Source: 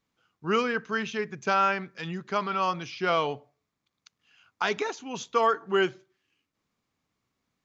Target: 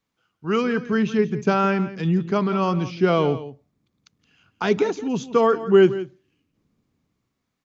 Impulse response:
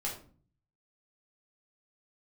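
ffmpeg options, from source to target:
-filter_complex "[0:a]acrossover=split=410|1300[a][b][c];[a]dynaudnorm=f=130:g=11:m=15.5dB[d];[d][b][c]amix=inputs=3:normalize=0,aecho=1:1:170:0.188"

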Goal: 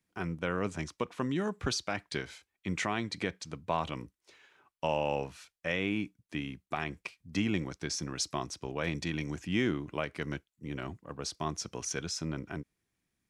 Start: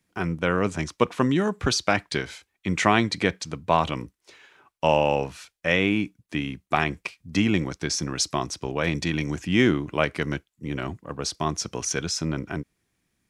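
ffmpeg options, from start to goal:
-af "alimiter=limit=-9dB:level=0:latency=1:release=255,volume=-8.5dB"

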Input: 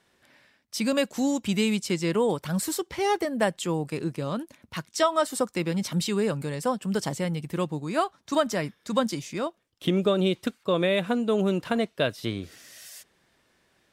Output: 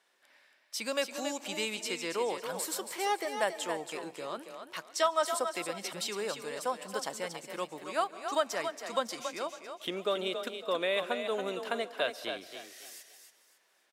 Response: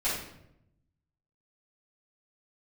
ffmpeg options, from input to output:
-filter_complex "[0:a]highpass=530,asplit=5[a][b][c][d][e];[b]adelay=277,afreqshift=31,volume=-7.5dB[f];[c]adelay=554,afreqshift=62,volume=-18dB[g];[d]adelay=831,afreqshift=93,volume=-28.4dB[h];[e]adelay=1108,afreqshift=124,volume=-38.9dB[i];[a][f][g][h][i]amix=inputs=5:normalize=0,asplit=2[j][k];[1:a]atrim=start_sample=2205,adelay=135[l];[k][l]afir=irnorm=-1:irlink=0,volume=-28.5dB[m];[j][m]amix=inputs=2:normalize=0,volume=-4dB"

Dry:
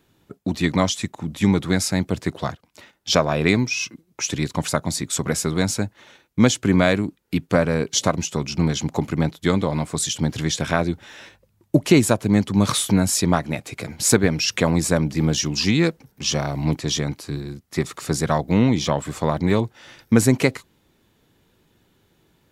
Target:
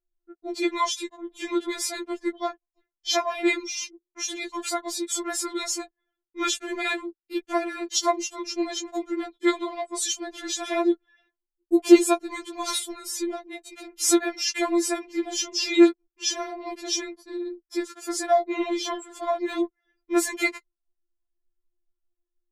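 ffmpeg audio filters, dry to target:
-filter_complex "[0:a]asettb=1/sr,asplit=3[a][b][c];[a]atrim=end=12.784[d];[b]atrim=start=12.78:end=13.87,asetpts=PTS-STARTPTS,afade=t=in:d=0.004:c=qsin,afade=t=out:st=1.086:d=0.004:c=qsin,acrossover=split=470|2900[e][f][g];[e]acompressor=threshold=-19dB:ratio=4[h];[f]acompressor=threshold=-38dB:ratio=4[i];[g]acompressor=threshold=-29dB:ratio=4[j];[h][i][j]amix=inputs=3:normalize=0[k];[c]atrim=start=13.866[l];[d][k]acrossfade=d=0.004:c1=hsin:c2=qsin[m];[m][l]acrossfade=d=0.004:c1=qsin:c2=hsin,anlmdn=6.31,afftfilt=real='re*4*eq(mod(b,16),0)':imag='im*4*eq(mod(b,16),0)':win_size=2048:overlap=0.75,volume=-1dB"

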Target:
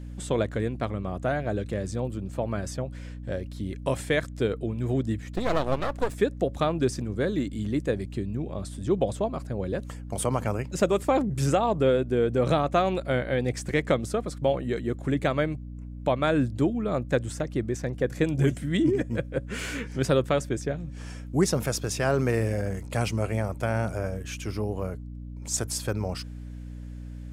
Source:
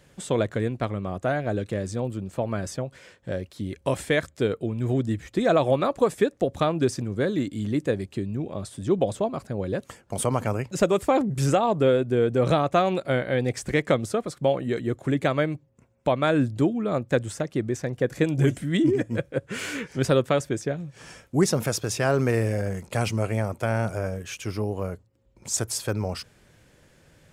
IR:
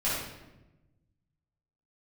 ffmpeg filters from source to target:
-filter_complex "[0:a]asplit=3[a][b][c];[a]afade=t=out:st=5.32:d=0.02[d];[b]aeval=exprs='max(val(0),0)':c=same,afade=t=in:st=5.32:d=0.02,afade=t=out:st=6.14:d=0.02[e];[c]afade=t=in:st=6.14:d=0.02[f];[d][e][f]amix=inputs=3:normalize=0,aeval=exprs='val(0)+0.0178*(sin(2*PI*60*n/s)+sin(2*PI*2*60*n/s)/2+sin(2*PI*3*60*n/s)/3+sin(2*PI*4*60*n/s)/4+sin(2*PI*5*60*n/s)/5)':c=same,volume=-2dB"

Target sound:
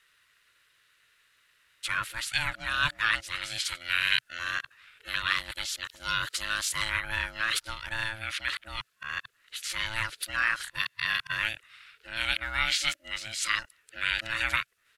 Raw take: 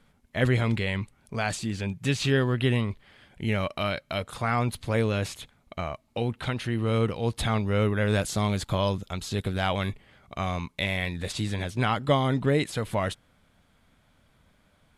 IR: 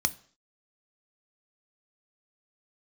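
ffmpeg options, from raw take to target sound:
-af "areverse,highshelf=f=8.9k:g=5,aeval=exprs='val(0)*sin(2*PI*440*n/s)':c=same,firequalizer=gain_entry='entry(120,0);entry(190,-17);entry(750,-12);entry(1400,14);entry(9200,10)':delay=0.05:min_phase=1,volume=-6dB"

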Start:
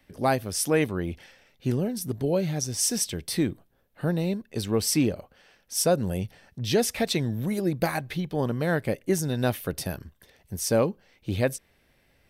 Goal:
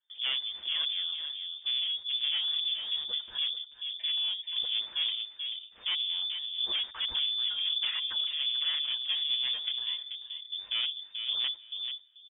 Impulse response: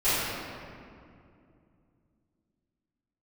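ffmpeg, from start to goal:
-filter_complex "[0:a]bandreject=f=50:t=h:w=6,bandreject=f=100:t=h:w=6,bandreject=f=150:t=h:w=6,agate=range=-21dB:threshold=-51dB:ratio=16:detection=peak,lowshelf=f=390:g=11,aecho=1:1:7.4:0.63,aeval=exprs='(tanh(10*val(0)+0.2)-tanh(0.2))/10':c=same,asplit=2[a][b];[b]adelay=436,lowpass=f=940:p=1,volume=-5dB,asplit=2[c][d];[d]adelay=436,lowpass=f=940:p=1,volume=0.16,asplit=2[e][f];[f]adelay=436,lowpass=f=940:p=1,volume=0.16[g];[c][e][g]amix=inputs=3:normalize=0[h];[a][h]amix=inputs=2:normalize=0,lowpass=f=3.1k:t=q:w=0.5098,lowpass=f=3.1k:t=q:w=0.6013,lowpass=f=3.1k:t=q:w=0.9,lowpass=f=3.1k:t=q:w=2.563,afreqshift=-3600,volume=-8.5dB"

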